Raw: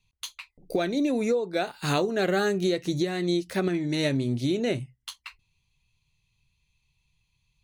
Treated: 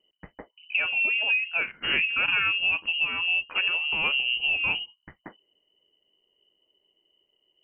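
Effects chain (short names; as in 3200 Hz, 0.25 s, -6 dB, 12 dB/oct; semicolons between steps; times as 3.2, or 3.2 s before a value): inverted band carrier 3000 Hz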